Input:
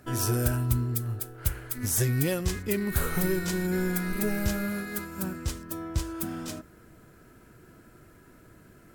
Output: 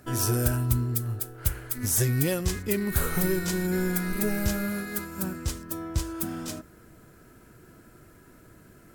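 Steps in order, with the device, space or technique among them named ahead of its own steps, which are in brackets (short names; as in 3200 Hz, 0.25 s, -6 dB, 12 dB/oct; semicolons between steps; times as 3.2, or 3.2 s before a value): exciter from parts (in parallel at -9.5 dB: HPF 3700 Hz 12 dB/oct + soft clip -28 dBFS, distortion -10 dB); on the sum: gain +1 dB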